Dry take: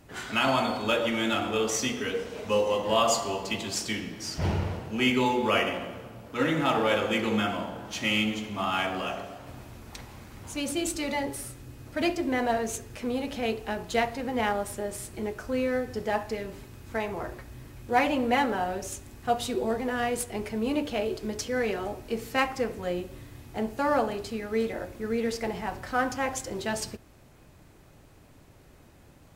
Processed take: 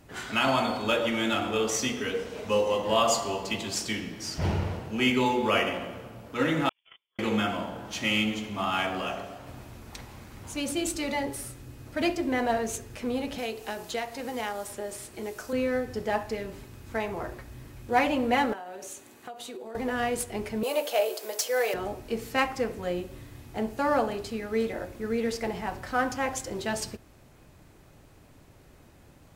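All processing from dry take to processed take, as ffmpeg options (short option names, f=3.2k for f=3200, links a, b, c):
-filter_complex "[0:a]asettb=1/sr,asplit=3[a][b][c];[a]atrim=end=6.694[d];[b]atrim=start=6.69:end=7.19,asetpts=PTS-STARTPTS,afade=t=in:d=0.004:c=qsin,afade=t=out:st=0.496:d=0.004:c=qsin,agate=range=-57dB:threshold=-20dB:ratio=16:release=100:detection=peak,equalizer=f=440:w=5.3:g=-11.5,lowpass=f=3.1k:t=q:w=0.5098,lowpass=f=3.1k:t=q:w=0.6013,lowpass=f=3.1k:t=q:w=0.9,lowpass=f=3.1k:t=q:w=2.563,afreqshift=-3600[e];[c]atrim=start=7.186[f];[d][e]acrossfade=d=0.004:c1=hsin:c2=qsin[g];[g][f]acrossfade=d=0.004:c1=qsin:c2=hsin,asettb=1/sr,asplit=3[h][i][j];[h]atrim=end=13.384[k];[i]atrim=start=13.38:end=15.53,asetpts=PTS-STARTPTS,afade=t=in:d=0.004:c=qsin,afade=t=out:st=2.146:d=0.004:c=qsin,acrossover=split=83|3900[l][m][n];[l]acompressor=threshold=-52dB:ratio=4[o];[m]acompressor=threshold=-29dB:ratio=4[p];[n]acompressor=threshold=-52dB:ratio=4[q];[o][p][q]amix=inputs=3:normalize=0,bass=f=250:g=-7,treble=f=4k:g=9[r];[j]atrim=start=15.526[s];[k][r]acrossfade=d=0.004:c1=hsin:c2=qsin[t];[t][s]acrossfade=d=0.004:c1=qsin:c2=hsin,asettb=1/sr,asplit=3[u][v][w];[u]atrim=end=18.534[x];[v]atrim=start=18.53:end=19.75,asetpts=PTS-STARTPTS,afade=t=in:d=0.004:c=qsin,afade=t=out:st=1.216:d=0.004:c=qsin,highpass=290,bandreject=f=5.2k:w=10,acompressor=threshold=-36dB:ratio=16:attack=3.2:release=140:knee=1:detection=peak[y];[w]atrim=start=19.746[z];[x][y]acrossfade=d=0.004:c1=hsin:c2=qsin[aa];[aa][z]acrossfade=d=0.004:c1=qsin:c2=hsin,asettb=1/sr,asplit=3[ab][ac][ad];[ab]atrim=end=20.634[ae];[ac]atrim=start=20.63:end=21.74,asetpts=PTS-STARTPTS,afade=t=in:d=0.004:c=qsin,afade=t=out:st=1.106:d=0.004:c=qsin,aemphasis=mode=production:type=bsi,asoftclip=type=hard:threshold=-21dB,highpass=f=580:t=q:w=2.5[af];[ad]atrim=start=21.736[ag];[ae][af]acrossfade=d=0.004:c1=hsin:c2=qsin[ah];[ah][ag]acrossfade=d=0.004:c1=qsin:c2=hsin"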